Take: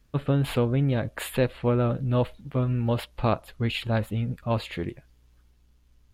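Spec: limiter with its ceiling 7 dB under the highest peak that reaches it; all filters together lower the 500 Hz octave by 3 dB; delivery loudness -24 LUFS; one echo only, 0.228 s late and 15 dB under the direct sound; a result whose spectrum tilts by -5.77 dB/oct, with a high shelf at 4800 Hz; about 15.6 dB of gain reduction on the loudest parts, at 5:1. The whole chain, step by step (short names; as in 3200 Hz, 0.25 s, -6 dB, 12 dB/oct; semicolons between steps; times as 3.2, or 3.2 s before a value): bell 500 Hz -3.5 dB; high shelf 4800 Hz -3.5 dB; compressor 5:1, threshold -38 dBFS; limiter -33 dBFS; echo 0.228 s -15 dB; gain +19 dB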